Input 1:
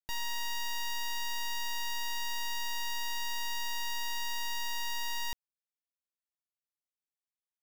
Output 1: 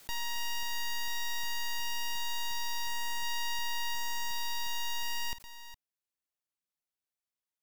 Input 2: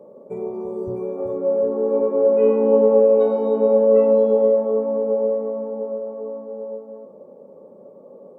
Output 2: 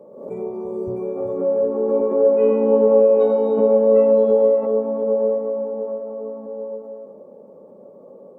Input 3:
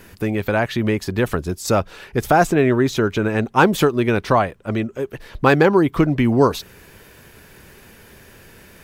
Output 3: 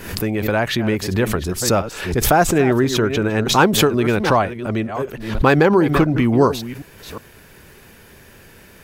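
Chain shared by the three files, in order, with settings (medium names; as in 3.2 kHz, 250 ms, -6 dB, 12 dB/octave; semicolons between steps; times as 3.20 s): chunks repeated in reverse 359 ms, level -13 dB; swell ahead of each attack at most 76 dB/s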